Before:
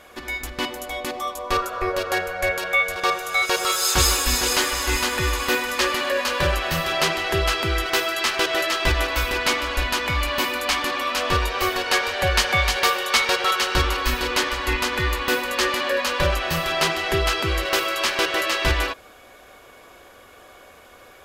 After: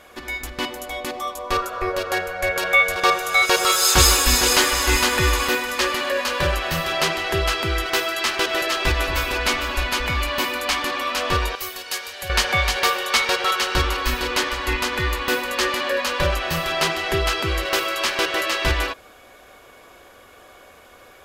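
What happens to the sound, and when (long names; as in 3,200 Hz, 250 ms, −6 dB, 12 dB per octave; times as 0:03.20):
0:02.56–0:05.48: clip gain +4 dB
0:08.04–0:10.23: delay that swaps between a low-pass and a high-pass 226 ms, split 870 Hz, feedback 56%, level −7 dB
0:11.55–0:12.30: first-order pre-emphasis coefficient 0.8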